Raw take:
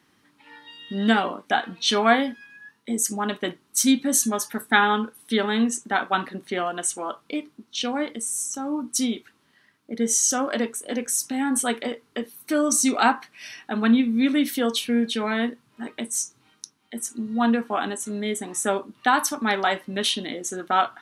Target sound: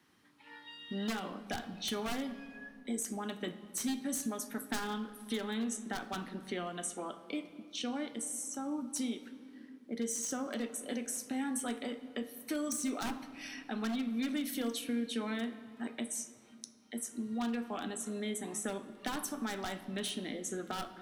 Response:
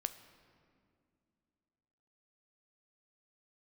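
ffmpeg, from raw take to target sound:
-filter_complex "[0:a]aeval=exprs='0.2*(abs(mod(val(0)/0.2+3,4)-2)-1)':channel_layout=same,acrossover=split=330|2800|7200[link_01][link_02][link_03][link_04];[link_01]acompressor=threshold=-32dB:ratio=4[link_05];[link_02]acompressor=threshold=-36dB:ratio=4[link_06];[link_03]acompressor=threshold=-42dB:ratio=4[link_07];[link_04]acompressor=threshold=-35dB:ratio=4[link_08];[link_05][link_06][link_07][link_08]amix=inputs=4:normalize=0[link_09];[1:a]atrim=start_sample=2205[link_10];[link_09][link_10]afir=irnorm=-1:irlink=0,volume=-5dB"

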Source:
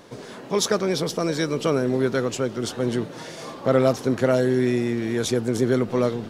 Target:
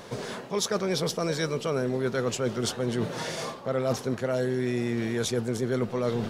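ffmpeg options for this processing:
ffmpeg -i in.wav -af "equalizer=frequency=300:width=4.4:gain=-9,areverse,acompressor=threshold=-29dB:ratio=6,areverse,volume=4.5dB" out.wav

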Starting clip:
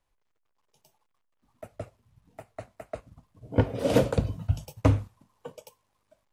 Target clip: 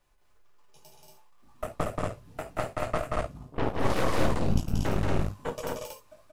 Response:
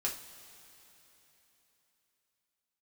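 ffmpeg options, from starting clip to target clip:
-filter_complex "[0:a]acontrast=84[link_01];[1:a]atrim=start_sample=2205,atrim=end_sample=3969[link_02];[link_01][link_02]afir=irnorm=-1:irlink=0,aeval=exprs='1*(cos(1*acos(clip(val(0)/1,-1,1)))-cos(1*PI/2))+0.2*(cos(3*acos(clip(val(0)/1,-1,1)))-cos(3*PI/2))+0.224*(cos(8*acos(clip(val(0)/1,-1,1)))-cos(8*PI/2))':channel_layout=same,areverse,acompressor=threshold=-30dB:ratio=16,areverse,aecho=1:1:180.8|233.2:0.708|0.794,volume=7dB"

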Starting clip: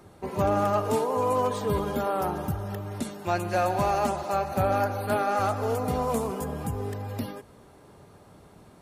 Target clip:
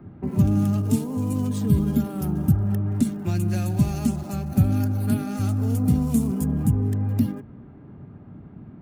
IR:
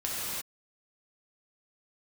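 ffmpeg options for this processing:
-filter_complex "[0:a]acrossover=split=290|2400[link_01][link_02][link_03];[link_02]acompressor=threshold=-37dB:ratio=6[link_04];[link_03]aeval=exprs='sgn(val(0))*max(abs(val(0))-0.00224,0)':channel_layout=same[link_05];[link_01][link_04][link_05]amix=inputs=3:normalize=0,equalizer=frequency=125:width_type=o:width=1:gain=6,equalizer=frequency=250:width_type=o:width=1:gain=8,equalizer=frequency=500:width_type=o:width=1:gain=-10,equalizer=frequency=1000:width_type=o:width=1:gain=-8,equalizer=frequency=2000:width_type=o:width=1:gain=-4,equalizer=frequency=4000:width_type=o:width=1:gain=-5,volume=6.5dB"

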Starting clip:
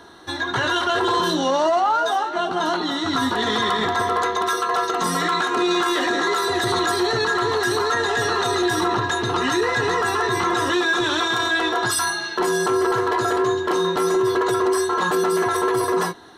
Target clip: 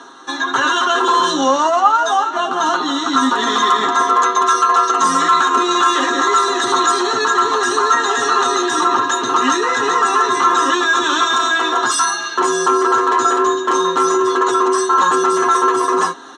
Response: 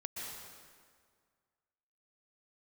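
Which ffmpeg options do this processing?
-af "aecho=1:1:7.5:0.61,areverse,acompressor=mode=upward:threshold=-34dB:ratio=2.5,areverse,highpass=frequency=230:width=0.5412,highpass=frequency=230:width=1.3066,equalizer=frequency=400:width_type=q:width=4:gain=-5,equalizer=frequency=630:width_type=q:width=4:gain=-7,equalizer=frequency=1200:width_type=q:width=4:gain=7,equalizer=frequency=2100:width_type=q:width=4:gain=-6,equalizer=frequency=4600:width_type=q:width=4:gain=-8,equalizer=frequency=6700:width_type=q:width=4:gain=9,lowpass=frequency=8200:width=0.5412,lowpass=frequency=8200:width=1.3066,volume=4.5dB"

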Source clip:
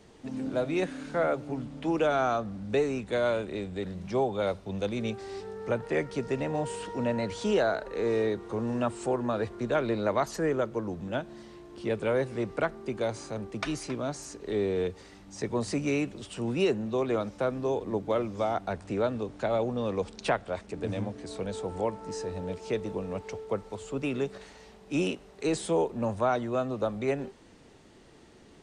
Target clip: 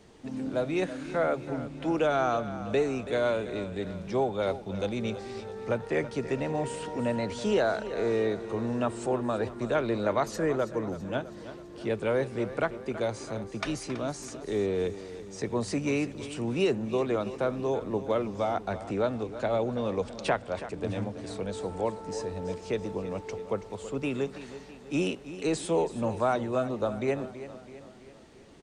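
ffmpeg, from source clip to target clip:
ffmpeg -i in.wav -af "aecho=1:1:328|656|984|1312|1640:0.211|0.112|0.0594|0.0315|0.0167" out.wav

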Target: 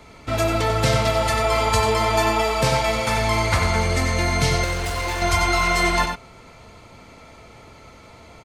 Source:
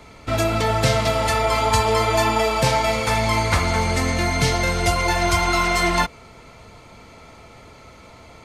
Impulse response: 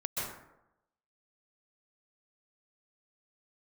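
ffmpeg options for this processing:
-filter_complex "[0:a]asettb=1/sr,asplit=3[link_01][link_02][link_03];[link_01]atrim=end=4.644[link_04];[link_02]atrim=start=4.64:end=5.22,asetpts=PTS-STARTPTS,afade=type=in:duration=0.004:curve=qsin,afade=type=out:start_time=0.576:duration=0.004:curve=qsin,volume=23dB,asoftclip=hard,volume=-23dB[link_05];[link_03]atrim=start=5.216[link_06];[link_04][link_05]acrossfade=duration=0.004:curve1=hsin:curve2=qsin[link_07];[link_07][link_06]acrossfade=duration=0.004:curve1=qsin:curve2=hsin,asplit=2[link_08][link_09];[link_09]adelay=93.29,volume=-6dB,highshelf=frequency=4000:gain=-2.1[link_10];[link_08][link_10]amix=inputs=2:normalize=0,volume=-1.5dB"

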